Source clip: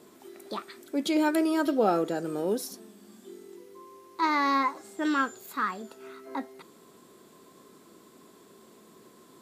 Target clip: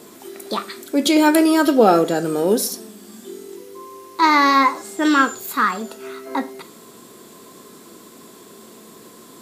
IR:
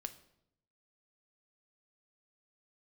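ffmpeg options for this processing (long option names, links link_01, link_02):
-filter_complex "[0:a]asplit=2[link_01][link_02];[1:a]atrim=start_sample=2205,atrim=end_sample=6174,highshelf=frequency=3700:gain=7[link_03];[link_02][link_03]afir=irnorm=-1:irlink=0,volume=11dB[link_04];[link_01][link_04]amix=inputs=2:normalize=0"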